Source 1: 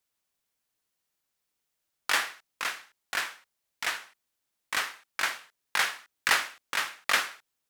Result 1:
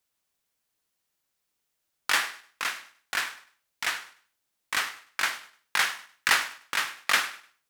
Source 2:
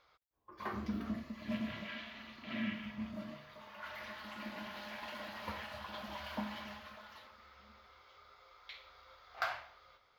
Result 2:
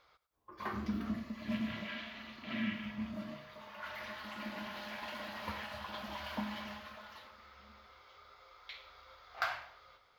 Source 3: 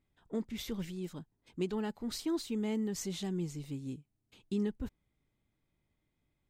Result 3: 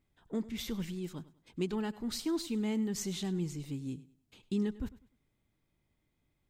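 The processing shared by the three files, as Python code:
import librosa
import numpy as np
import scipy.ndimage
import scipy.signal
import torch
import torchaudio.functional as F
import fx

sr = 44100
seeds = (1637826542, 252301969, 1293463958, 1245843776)

p1 = fx.dynamic_eq(x, sr, hz=540.0, q=1.3, threshold_db=-48.0, ratio=4.0, max_db=-4)
p2 = p1 + fx.echo_feedback(p1, sr, ms=100, feedback_pct=30, wet_db=-18, dry=0)
y = p2 * librosa.db_to_amplitude(2.0)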